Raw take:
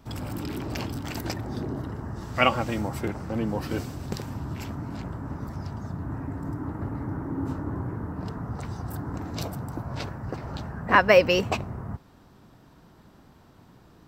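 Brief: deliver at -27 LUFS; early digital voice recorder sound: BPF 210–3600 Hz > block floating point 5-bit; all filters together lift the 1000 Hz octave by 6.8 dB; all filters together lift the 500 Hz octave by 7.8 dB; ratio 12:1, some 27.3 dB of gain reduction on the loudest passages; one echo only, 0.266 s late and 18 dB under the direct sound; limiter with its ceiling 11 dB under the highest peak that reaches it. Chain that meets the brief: bell 500 Hz +7.5 dB; bell 1000 Hz +6 dB; compressor 12:1, threshold -32 dBFS; limiter -28.5 dBFS; BPF 210–3600 Hz; echo 0.266 s -18 dB; block floating point 5-bit; gain +13.5 dB

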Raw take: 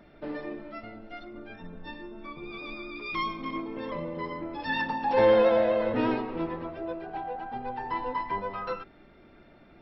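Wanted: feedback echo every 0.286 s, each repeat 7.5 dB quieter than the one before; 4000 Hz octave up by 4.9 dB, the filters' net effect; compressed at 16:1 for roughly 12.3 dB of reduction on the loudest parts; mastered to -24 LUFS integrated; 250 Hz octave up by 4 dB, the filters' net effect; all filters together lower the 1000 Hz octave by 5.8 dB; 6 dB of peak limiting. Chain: bell 250 Hz +5.5 dB; bell 1000 Hz -7.5 dB; bell 4000 Hz +6.5 dB; compressor 16:1, threshold -29 dBFS; limiter -27.5 dBFS; feedback echo 0.286 s, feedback 42%, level -7.5 dB; gain +12.5 dB

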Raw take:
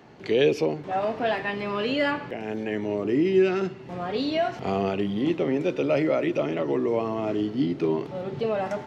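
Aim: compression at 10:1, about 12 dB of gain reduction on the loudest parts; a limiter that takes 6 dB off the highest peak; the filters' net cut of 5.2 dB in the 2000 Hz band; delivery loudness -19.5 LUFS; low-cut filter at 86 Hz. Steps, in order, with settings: HPF 86 Hz; bell 2000 Hz -6.5 dB; compressor 10:1, threshold -28 dBFS; gain +14.5 dB; limiter -10.5 dBFS

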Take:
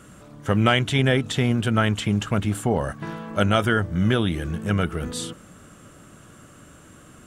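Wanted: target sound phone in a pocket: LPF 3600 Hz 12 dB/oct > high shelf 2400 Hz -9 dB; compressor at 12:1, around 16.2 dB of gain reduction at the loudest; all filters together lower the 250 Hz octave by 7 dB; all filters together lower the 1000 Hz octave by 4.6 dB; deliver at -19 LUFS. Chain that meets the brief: bell 250 Hz -9 dB; bell 1000 Hz -4 dB; compressor 12:1, threshold -34 dBFS; LPF 3600 Hz 12 dB/oct; high shelf 2400 Hz -9 dB; gain +21 dB

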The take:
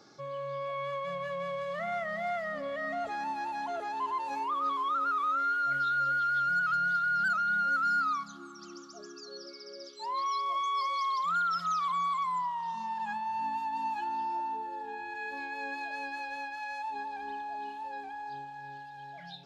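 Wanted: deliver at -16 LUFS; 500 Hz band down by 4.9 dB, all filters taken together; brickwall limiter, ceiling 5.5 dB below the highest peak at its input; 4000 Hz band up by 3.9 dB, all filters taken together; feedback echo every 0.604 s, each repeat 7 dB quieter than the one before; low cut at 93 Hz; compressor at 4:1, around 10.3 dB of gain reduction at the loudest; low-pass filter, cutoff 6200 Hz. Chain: HPF 93 Hz; LPF 6200 Hz; bell 500 Hz -6.5 dB; bell 4000 Hz +5.5 dB; compressor 4:1, threshold -40 dBFS; limiter -37.5 dBFS; feedback echo 0.604 s, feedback 45%, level -7 dB; gain +26 dB

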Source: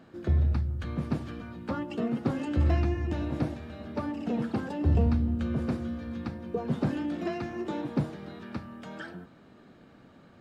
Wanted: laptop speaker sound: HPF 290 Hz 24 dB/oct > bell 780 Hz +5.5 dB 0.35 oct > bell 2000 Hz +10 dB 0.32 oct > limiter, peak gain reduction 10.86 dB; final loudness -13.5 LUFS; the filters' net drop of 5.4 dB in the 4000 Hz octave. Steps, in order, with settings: HPF 290 Hz 24 dB/oct; bell 780 Hz +5.5 dB 0.35 oct; bell 2000 Hz +10 dB 0.32 oct; bell 4000 Hz -8.5 dB; gain +25.5 dB; limiter -3 dBFS

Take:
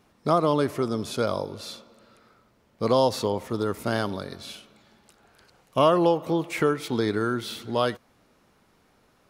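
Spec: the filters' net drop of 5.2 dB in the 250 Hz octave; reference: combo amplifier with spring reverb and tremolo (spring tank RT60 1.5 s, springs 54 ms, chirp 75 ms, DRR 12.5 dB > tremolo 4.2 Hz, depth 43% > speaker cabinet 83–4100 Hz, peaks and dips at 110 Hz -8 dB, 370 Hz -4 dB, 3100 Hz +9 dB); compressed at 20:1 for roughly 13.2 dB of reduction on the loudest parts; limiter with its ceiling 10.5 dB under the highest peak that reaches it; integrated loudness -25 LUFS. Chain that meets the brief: bell 250 Hz -5 dB; compressor 20:1, threshold -29 dBFS; limiter -27.5 dBFS; spring tank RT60 1.5 s, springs 54 ms, chirp 75 ms, DRR 12.5 dB; tremolo 4.2 Hz, depth 43%; speaker cabinet 83–4100 Hz, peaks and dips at 110 Hz -8 dB, 370 Hz -4 dB, 3100 Hz +9 dB; gain +16 dB

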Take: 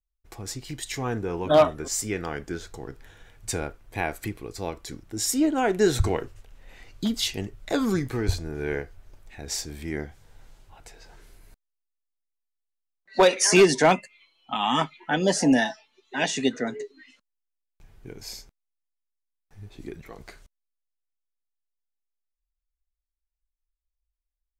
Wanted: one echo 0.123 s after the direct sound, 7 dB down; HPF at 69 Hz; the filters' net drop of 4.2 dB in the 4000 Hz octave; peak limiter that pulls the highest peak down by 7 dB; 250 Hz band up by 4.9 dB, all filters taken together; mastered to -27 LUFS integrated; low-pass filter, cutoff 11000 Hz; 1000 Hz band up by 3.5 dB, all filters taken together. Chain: HPF 69 Hz; LPF 11000 Hz; bell 250 Hz +6 dB; bell 1000 Hz +4.5 dB; bell 4000 Hz -6 dB; limiter -12 dBFS; echo 0.123 s -7 dB; gain -2.5 dB

